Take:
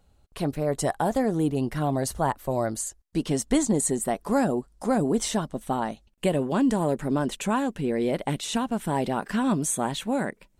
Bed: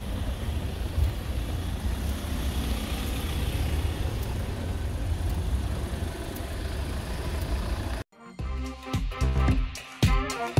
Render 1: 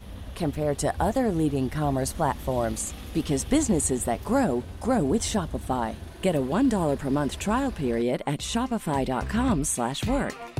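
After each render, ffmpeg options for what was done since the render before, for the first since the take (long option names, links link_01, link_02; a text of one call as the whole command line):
ffmpeg -i in.wav -i bed.wav -filter_complex "[1:a]volume=-8.5dB[link_01];[0:a][link_01]amix=inputs=2:normalize=0" out.wav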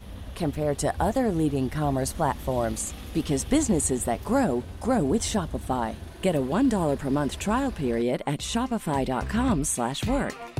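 ffmpeg -i in.wav -af anull out.wav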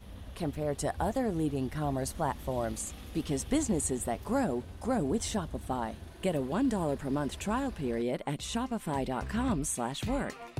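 ffmpeg -i in.wav -af "volume=-6.5dB" out.wav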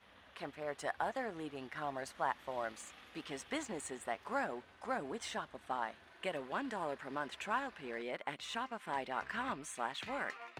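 ffmpeg -i in.wav -filter_complex "[0:a]bandpass=frequency=1700:width_type=q:width=1.1:csg=0,asplit=2[link_01][link_02];[link_02]aeval=exprs='sgn(val(0))*max(abs(val(0))-0.00316,0)':channel_layout=same,volume=-9dB[link_03];[link_01][link_03]amix=inputs=2:normalize=0" out.wav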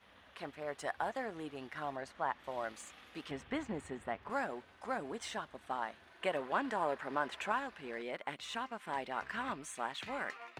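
ffmpeg -i in.wav -filter_complex "[0:a]asettb=1/sr,asplit=3[link_01][link_02][link_03];[link_01]atrim=end=1.964[link_04];[link_02]atrim=start=1.96:end=2.44,asetpts=PTS-STARTPTS,afade=type=in:duration=0.004:curve=qsin,afade=type=out:start_time=0.476:duration=0.004:curve=qsin,aemphasis=mode=reproduction:type=50kf[link_05];[link_03]atrim=start=2.436[link_06];[link_04][link_05]acrossfade=duration=0.004:curve1=hsin:curve2=qsin[link_07];[link_07][link_06]acrossfade=duration=0.004:curve1=qsin:curve2=hsin,asettb=1/sr,asplit=3[link_08][link_09][link_10];[link_08]atrim=end=3.314[link_11];[link_09]atrim=start=3.31:end=4.3,asetpts=PTS-STARTPTS,afade=type=in:duration=0.004:curve=qsin,afade=type=out:start_time=0.986:duration=0.004:curve=qsin,bass=frequency=250:gain=9,treble=frequency=4000:gain=-13[link_12];[link_10]atrim=start=4.296[link_13];[link_11][link_12]acrossfade=duration=0.004:curve1=hsin:curve2=qsin[link_14];[link_14][link_13]acrossfade=duration=0.004:curve1=qsin:curve2=hsin,asettb=1/sr,asplit=3[link_15][link_16][link_17];[link_15]atrim=end=6.224[link_18];[link_16]atrim=start=6.22:end=7.52,asetpts=PTS-STARTPTS,afade=type=in:duration=0.004:curve=qsin,afade=type=out:start_time=1.296:duration=0.004:curve=qsin,equalizer=frequency=900:width=0.48:gain=6[link_19];[link_17]atrim=start=7.516[link_20];[link_18][link_19]acrossfade=duration=0.004:curve1=hsin:curve2=qsin[link_21];[link_21][link_20]acrossfade=duration=0.004:curve1=qsin:curve2=hsin" out.wav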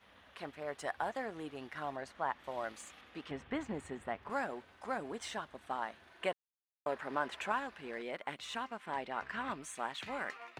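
ffmpeg -i in.wav -filter_complex "[0:a]asettb=1/sr,asplit=3[link_01][link_02][link_03];[link_01]atrim=end=3.014[link_04];[link_02]atrim=start=3.01:end=3.61,asetpts=PTS-STARTPTS,afade=type=in:duration=0.004:curve=qsin,afade=type=out:start_time=0.596:duration=0.004:curve=qsin,aemphasis=mode=reproduction:type=cd[link_05];[link_03]atrim=start=3.606[link_06];[link_04][link_05]acrossfade=duration=0.004:curve1=hsin:curve2=qsin[link_07];[link_07][link_06]acrossfade=duration=0.004:curve1=qsin:curve2=hsin,asettb=1/sr,asplit=3[link_08][link_09][link_10];[link_08]atrim=end=8.774[link_11];[link_09]atrim=start=8.77:end=9.5,asetpts=PTS-STARTPTS,afade=type=in:duration=0.004:curve=qsin,afade=type=out:start_time=0.726:duration=0.004:curve=qsin,highshelf=frequency=7400:gain=-9[link_12];[link_10]atrim=start=9.496[link_13];[link_11][link_12]acrossfade=duration=0.004:curve1=hsin:curve2=qsin[link_14];[link_14][link_13]acrossfade=duration=0.004:curve1=qsin:curve2=hsin,asplit=3[link_15][link_16][link_17];[link_15]atrim=end=6.33,asetpts=PTS-STARTPTS,afade=type=out:start_time=6.326:duration=0.004:curve=hsin[link_18];[link_16]atrim=start=6.33:end=6.86,asetpts=PTS-STARTPTS,volume=0[link_19];[link_17]atrim=start=6.86,asetpts=PTS-STARTPTS,afade=type=in:duration=0.004:curve=hsin[link_20];[link_18][link_19][link_20]concat=n=3:v=0:a=1" out.wav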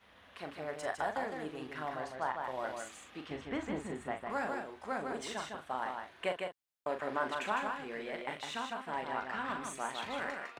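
ffmpeg -i in.wav -filter_complex "[0:a]asplit=2[link_01][link_02];[link_02]adelay=39,volume=-7dB[link_03];[link_01][link_03]amix=inputs=2:normalize=0,asplit=2[link_04][link_05];[link_05]aecho=0:1:155:0.596[link_06];[link_04][link_06]amix=inputs=2:normalize=0" out.wav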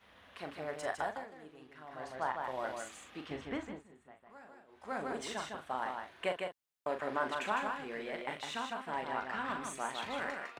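ffmpeg -i in.wav -filter_complex "[0:a]asplit=5[link_01][link_02][link_03][link_04][link_05];[link_01]atrim=end=1.27,asetpts=PTS-STARTPTS,afade=type=out:start_time=0.99:duration=0.28:silence=0.251189[link_06];[link_02]atrim=start=1.27:end=1.88,asetpts=PTS-STARTPTS,volume=-12dB[link_07];[link_03]atrim=start=1.88:end=3.84,asetpts=PTS-STARTPTS,afade=type=in:duration=0.28:silence=0.251189,afade=type=out:start_time=1.62:duration=0.34:silence=0.112202[link_08];[link_04]atrim=start=3.84:end=4.67,asetpts=PTS-STARTPTS,volume=-19dB[link_09];[link_05]atrim=start=4.67,asetpts=PTS-STARTPTS,afade=type=in:duration=0.34:silence=0.112202[link_10];[link_06][link_07][link_08][link_09][link_10]concat=n=5:v=0:a=1" out.wav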